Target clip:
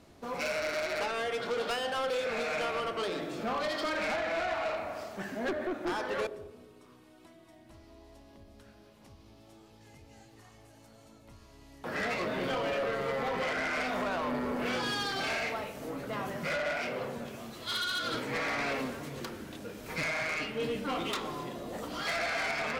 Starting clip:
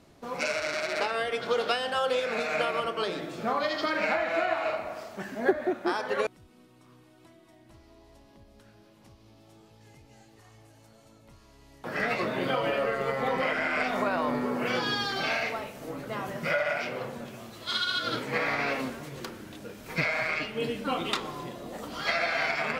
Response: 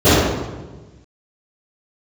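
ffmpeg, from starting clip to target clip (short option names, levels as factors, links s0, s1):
-filter_complex "[0:a]asoftclip=type=tanh:threshold=0.0376,asplit=2[s0][s1];[1:a]atrim=start_sample=2205[s2];[s1][s2]afir=irnorm=-1:irlink=0,volume=0.00501[s3];[s0][s3]amix=inputs=2:normalize=0"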